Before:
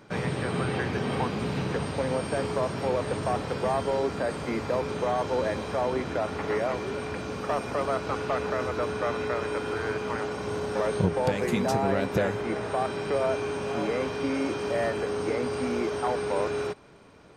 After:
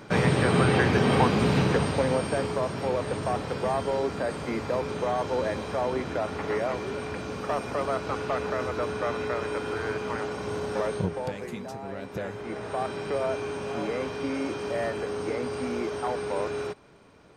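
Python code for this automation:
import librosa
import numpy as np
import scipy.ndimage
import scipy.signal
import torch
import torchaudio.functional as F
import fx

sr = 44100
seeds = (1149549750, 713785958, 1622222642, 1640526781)

y = fx.gain(x, sr, db=fx.line((1.57, 7.0), (2.59, -0.5), (10.78, -0.5), (11.76, -13.0), (12.81, -2.0)))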